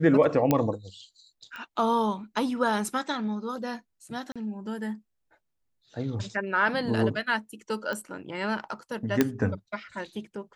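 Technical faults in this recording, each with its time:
0.51 pop -9 dBFS
1.56 pop -26 dBFS
4.32–4.36 gap 36 ms
7.93 pop -21 dBFS
9.21 pop -7 dBFS

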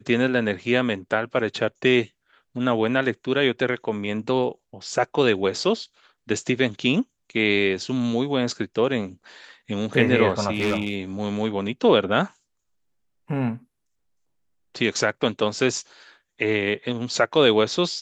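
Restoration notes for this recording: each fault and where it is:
10.52–10.95 clipped -18 dBFS

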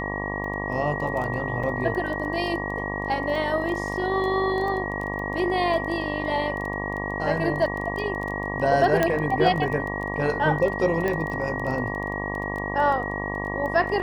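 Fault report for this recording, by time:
buzz 50 Hz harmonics 23 -31 dBFS
crackle 12/s -29 dBFS
tone 1900 Hz -31 dBFS
1.63–1.64 gap 5.4 ms
9.03 pop -8 dBFS
11.08 pop -14 dBFS

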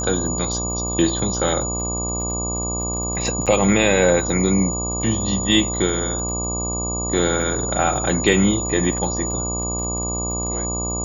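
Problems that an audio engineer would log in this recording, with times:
buzz 60 Hz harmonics 20 -27 dBFS
crackle 25/s -29 dBFS
tone 6900 Hz -25 dBFS
3.46–3.47 gap 6.4 ms

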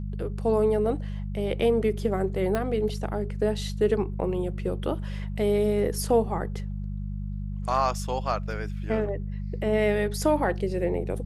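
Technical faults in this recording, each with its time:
hum 50 Hz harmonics 4 -32 dBFS
2.55 pop -14 dBFS

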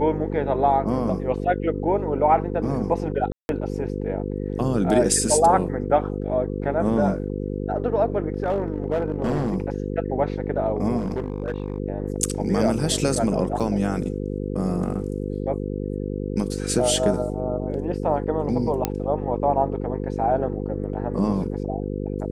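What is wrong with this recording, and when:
buzz 50 Hz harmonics 10 -28 dBFS
3.32–3.49 gap 0.171 s
8.4–9.56 clipped -17.5 dBFS
10.97–11.78 clipped -21 dBFS
13.6–13.61 gap 5.1 ms
18.85 pop -6 dBFS

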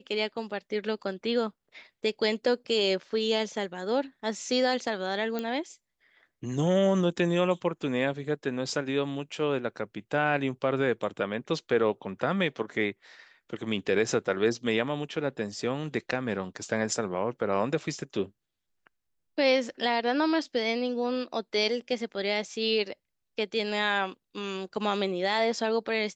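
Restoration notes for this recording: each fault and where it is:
5.39 pop -18 dBFS

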